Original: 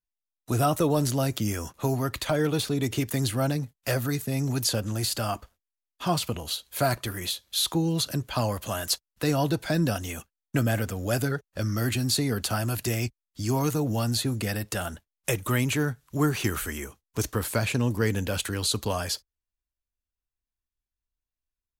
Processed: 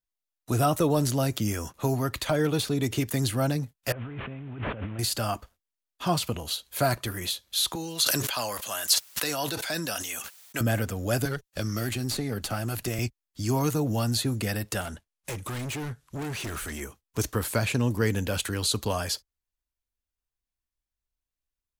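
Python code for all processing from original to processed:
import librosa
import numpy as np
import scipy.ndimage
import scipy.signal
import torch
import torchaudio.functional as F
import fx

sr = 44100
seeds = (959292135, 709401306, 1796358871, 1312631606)

y = fx.chain(x, sr, fx.delta_mod(bps=16000, step_db=-36.5),
    fx.over_compress(threshold_db=-36.0, ratio=-1.0), at=(3.92, 4.99))
y = fx.chain(y, sr, fx.highpass(hz=990.0, slope=6),
    fx.high_shelf(hz=2500.0, db=4.5),
    fx.sustainer(db_per_s=31.0), at=(7.75, 10.61))
y = fx.chain(y, sr, fx.tube_stage(drive_db=18.0, bias=0.7),
    fx.notch(hz=980.0, q=23.0),
    fx.band_squash(depth_pct=70), at=(11.25, 12.99))
y = fx.chain(y, sr, fx.lowpass(hz=12000.0, slope=24),
    fx.overload_stage(gain_db=31.5), at=(14.81, 16.81))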